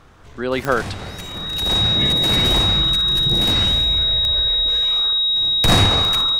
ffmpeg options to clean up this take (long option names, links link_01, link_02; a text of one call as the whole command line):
ffmpeg -i in.wav -af "adeclick=threshold=4,bandreject=frequency=3800:width=30" out.wav